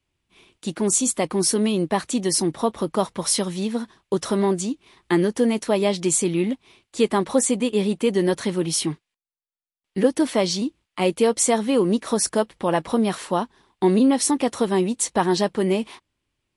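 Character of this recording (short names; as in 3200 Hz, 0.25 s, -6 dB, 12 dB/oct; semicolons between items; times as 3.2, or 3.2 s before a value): noise floor -83 dBFS; spectral tilt -4.0 dB/oct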